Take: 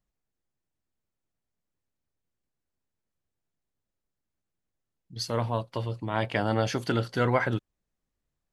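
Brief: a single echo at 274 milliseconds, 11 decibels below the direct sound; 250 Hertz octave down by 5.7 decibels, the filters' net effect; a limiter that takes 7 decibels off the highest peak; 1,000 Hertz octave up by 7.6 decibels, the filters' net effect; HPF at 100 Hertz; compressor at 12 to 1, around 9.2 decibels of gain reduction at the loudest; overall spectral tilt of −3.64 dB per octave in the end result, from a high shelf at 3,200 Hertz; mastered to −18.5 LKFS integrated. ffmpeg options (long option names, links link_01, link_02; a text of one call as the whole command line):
ffmpeg -i in.wav -af "highpass=100,equalizer=frequency=250:width_type=o:gain=-8,equalizer=frequency=1000:width_type=o:gain=9,highshelf=frequency=3200:gain=9,acompressor=threshold=-23dB:ratio=12,alimiter=limit=-18dB:level=0:latency=1,aecho=1:1:274:0.282,volume=13dB" out.wav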